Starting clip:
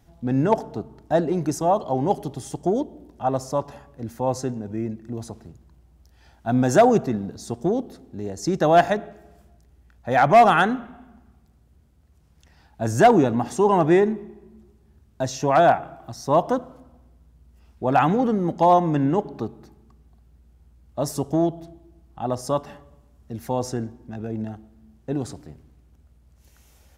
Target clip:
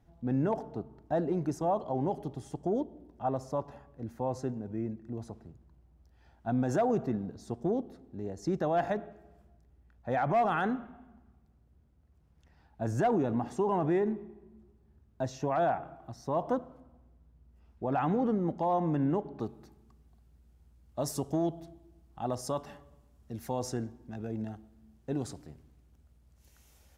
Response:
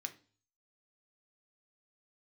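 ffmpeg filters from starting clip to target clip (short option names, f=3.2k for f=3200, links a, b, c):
-af "asetnsamples=n=441:p=0,asendcmd='19.4 highshelf g 2',highshelf=f=2.9k:g=-11,alimiter=limit=-14dB:level=0:latency=1:release=33,volume=-7dB"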